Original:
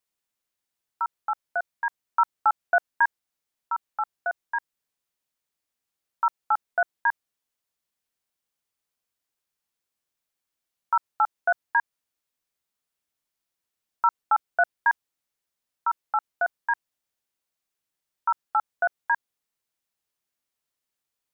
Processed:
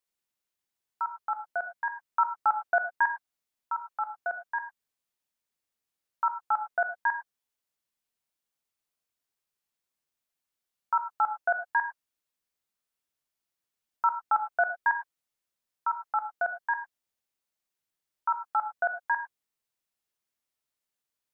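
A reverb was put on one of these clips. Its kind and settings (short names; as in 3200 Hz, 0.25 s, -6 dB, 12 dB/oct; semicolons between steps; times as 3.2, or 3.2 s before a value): non-linear reverb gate 0.13 s flat, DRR 8 dB; gain -3.5 dB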